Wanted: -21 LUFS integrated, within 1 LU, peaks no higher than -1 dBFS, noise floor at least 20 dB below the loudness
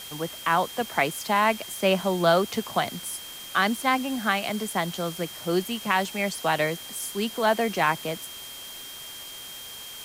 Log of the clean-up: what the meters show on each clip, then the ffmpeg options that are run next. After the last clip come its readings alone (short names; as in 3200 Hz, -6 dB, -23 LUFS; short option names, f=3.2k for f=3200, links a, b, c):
steady tone 3200 Hz; tone level -41 dBFS; noise floor -40 dBFS; noise floor target -46 dBFS; loudness -26.0 LUFS; peak -7.5 dBFS; loudness target -21.0 LUFS
-> -af "bandreject=f=3.2k:w=30"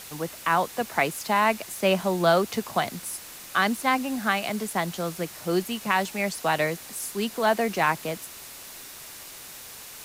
steady tone none; noise floor -43 dBFS; noise floor target -46 dBFS
-> -af "afftdn=nr=6:nf=-43"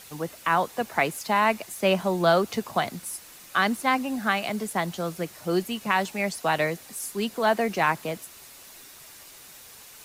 noise floor -48 dBFS; loudness -26.0 LUFS; peak -8.0 dBFS; loudness target -21.0 LUFS
-> -af "volume=5dB"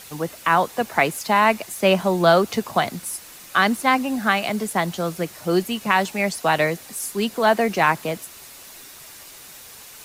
loudness -21.0 LUFS; peak -3.0 dBFS; noise floor -43 dBFS